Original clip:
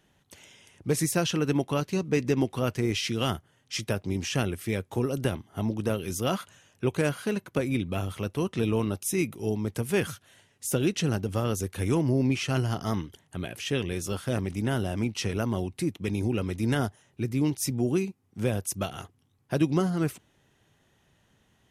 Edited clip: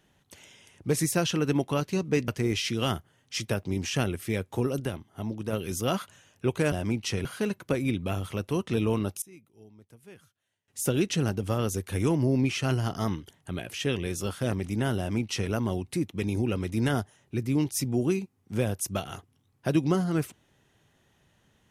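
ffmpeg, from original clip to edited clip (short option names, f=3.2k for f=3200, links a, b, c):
-filter_complex "[0:a]asplit=8[a][b][c][d][e][f][g][h];[a]atrim=end=2.282[i];[b]atrim=start=2.668:end=5.192[j];[c]atrim=start=5.188:end=5.922,asetpts=PTS-STARTPTS,volume=-4.5dB[k];[d]atrim=start=5.918:end=7.112[l];[e]atrim=start=14.838:end=15.372[m];[f]atrim=start=7.108:end=9.08,asetpts=PTS-STARTPTS,afade=t=out:st=1.832:d=0.14:c=log:silence=0.0630957[n];[g]atrim=start=9.08:end=10.54,asetpts=PTS-STARTPTS,volume=-24dB[o];[h]atrim=start=10.54,asetpts=PTS-STARTPTS,afade=t=in:d=0.14:c=log:silence=0.0630957[p];[i][j]acrossfade=d=0.004:c1=hsin:c2=hsin[q];[q][k]acrossfade=d=0.004:c1=hsin:c2=hsin[r];[r][l]acrossfade=d=0.004:c1=hsin:c2=hsin[s];[s][m]acrossfade=d=0.004:c1=hsin:c2=hsin[t];[n][o][p]concat=n=3:v=0:a=1[u];[t][u]acrossfade=d=0.004:c1=hsin:c2=hsin"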